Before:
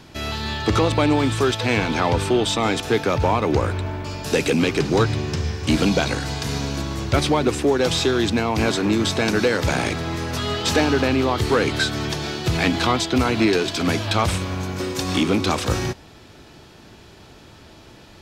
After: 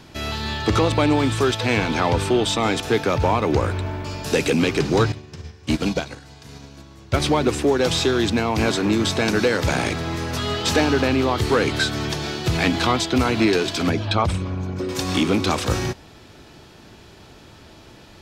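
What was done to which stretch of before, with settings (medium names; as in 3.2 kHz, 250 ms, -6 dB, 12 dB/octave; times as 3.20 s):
5.12–7.20 s: upward expansion 2.5:1, over -26 dBFS
13.89–14.89 s: resonances exaggerated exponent 1.5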